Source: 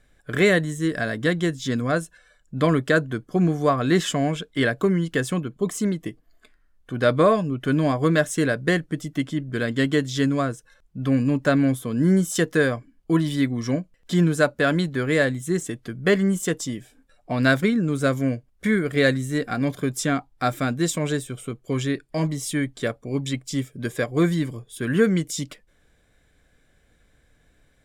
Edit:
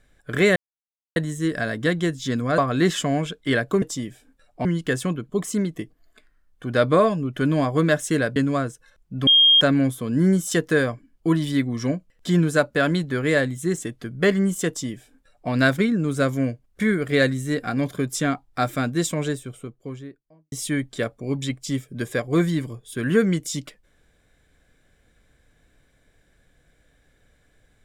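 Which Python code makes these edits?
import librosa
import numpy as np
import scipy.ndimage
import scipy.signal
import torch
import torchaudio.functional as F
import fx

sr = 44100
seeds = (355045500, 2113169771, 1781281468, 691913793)

y = fx.studio_fade_out(x, sr, start_s=20.85, length_s=1.51)
y = fx.edit(y, sr, fx.insert_silence(at_s=0.56, length_s=0.6),
    fx.cut(start_s=1.98, length_s=1.7),
    fx.cut(start_s=8.63, length_s=1.57),
    fx.bleep(start_s=11.11, length_s=0.34, hz=3230.0, db=-11.0),
    fx.duplicate(start_s=16.52, length_s=0.83, to_s=4.92), tone=tone)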